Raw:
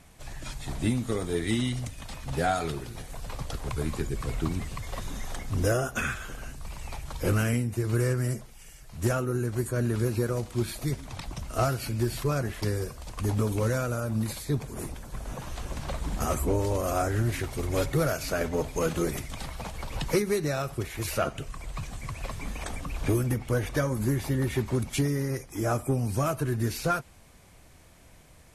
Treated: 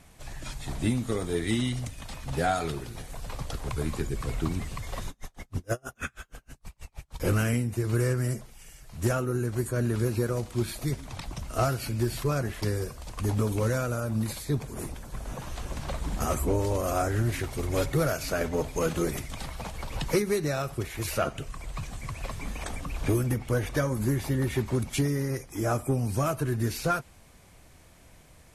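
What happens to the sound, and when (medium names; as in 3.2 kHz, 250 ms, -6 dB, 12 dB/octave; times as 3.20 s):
5.09–7.20 s: logarithmic tremolo 6.3 Hz, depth 40 dB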